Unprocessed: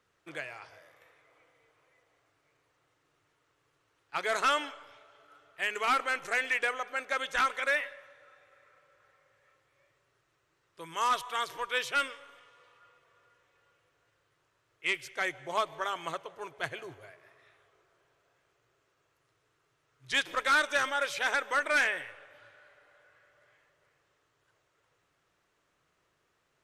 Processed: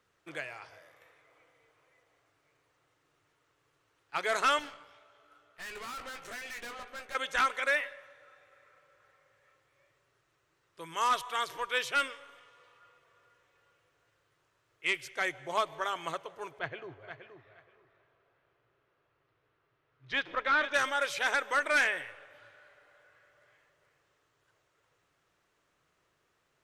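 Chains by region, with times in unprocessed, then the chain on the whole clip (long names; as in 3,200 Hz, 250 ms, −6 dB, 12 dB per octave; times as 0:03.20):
0:04.59–0:07.15: tube saturation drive 41 dB, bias 0.75 + double-tracking delay 17 ms −7 dB
0:16.59–0:20.74: high-frequency loss of the air 260 metres + repeating echo 474 ms, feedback 17%, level −9.5 dB
whole clip: no processing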